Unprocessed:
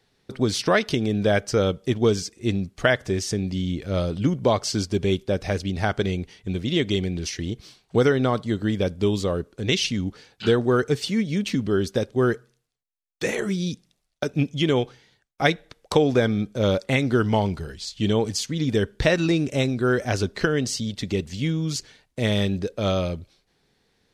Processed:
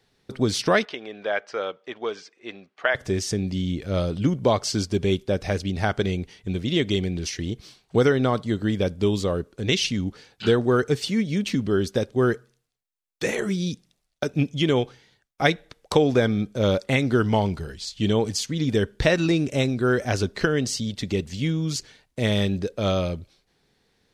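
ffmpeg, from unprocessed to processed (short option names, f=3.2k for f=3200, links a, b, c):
-filter_complex "[0:a]asettb=1/sr,asplit=3[a][b][c];[a]atrim=end=0.854[d];[b]atrim=start=0.85:end=2.95,asetpts=PTS-STARTPTS,afade=t=in:d=0.004:c=qsin,afade=t=out:st=2.096:d=0.004:c=qsin,highpass=700,lowpass=2.5k[e];[c]atrim=start=2.946[f];[d][e]acrossfade=d=0.004:c1=hsin:c2=qsin[g];[g][f]acrossfade=d=0.004:c1=qsin:c2=hsin"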